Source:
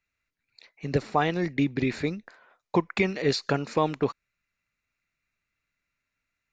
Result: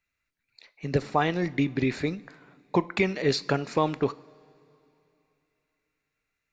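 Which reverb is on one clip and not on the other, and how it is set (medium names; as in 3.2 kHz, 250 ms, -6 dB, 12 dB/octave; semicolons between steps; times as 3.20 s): two-slope reverb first 0.38 s, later 3 s, from -17 dB, DRR 15 dB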